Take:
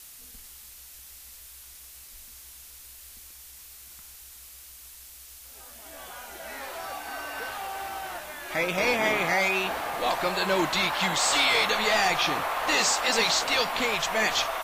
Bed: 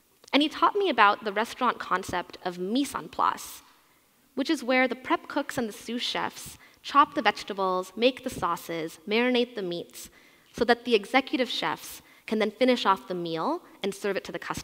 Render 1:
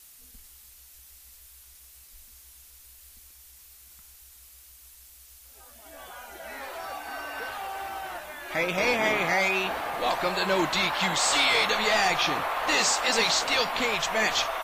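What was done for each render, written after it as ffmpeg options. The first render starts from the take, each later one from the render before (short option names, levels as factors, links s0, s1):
-af "afftdn=nr=6:nf=-47"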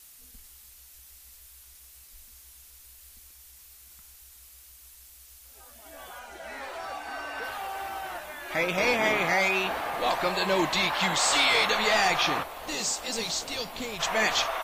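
-filter_complex "[0:a]asettb=1/sr,asplit=3[s0][s1][s2];[s0]atrim=end=6.194[s3];[s1]atrim=start=6.19:end=7.44,asetpts=PTS-STARTPTS,afade=t=in:d=0.004:c=qsin,afade=t=out:st=1.246:d=0.004:c=qsin,equalizer=f=13000:t=o:w=0.53:g=-12[s4];[s2]atrim=start=7.436[s5];[s3][s4]acrossfade=d=0.004:c1=hsin:c2=qsin[s6];[s6][s5]acrossfade=d=0.004:c1=qsin:c2=hsin,asettb=1/sr,asplit=3[s7][s8][s9];[s7]atrim=end=10.324[s10];[s8]atrim=start=10.32:end=10.9,asetpts=PTS-STARTPTS,afade=t=in:d=0.004:c=qsin,afade=t=out:st=0.576:d=0.004:c=qsin,bandreject=f=1400:w=5.9[s11];[s9]atrim=start=10.896[s12];[s10][s11]acrossfade=d=0.004:c1=hsin:c2=qsin[s13];[s13][s12]acrossfade=d=0.004:c1=qsin:c2=hsin,asplit=3[s14][s15][s16];[s14]afade=t=out:st=12.42:d=0.02[s17];[s15]equalizer=f=1400:w=0.41:g=-14.5,afade=t=in:st=12.42:d=0.02,afade=t=out:st=13.99:d=0.02[s18];[s16]afade=t=in:st=13.99:d=0.02[s19];[s17][s18][s19]amix=inputs=3:normalize=0"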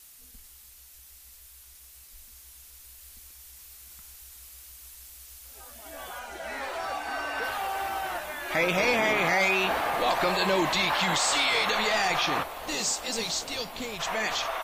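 -af "alimiter=limit=0.1:level=0:latency=1:release=38,dynaudnorm=f=470:g=13:m=1.58"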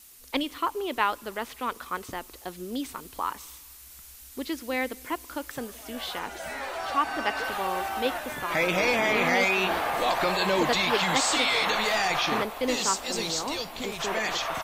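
-filter_complex "[1:a]volume=0.501[s0];[0:a][s0]amix=inputs=2:normalize=0"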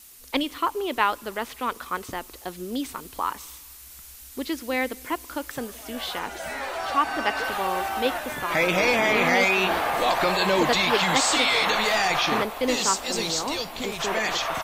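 -af "volume=1.41"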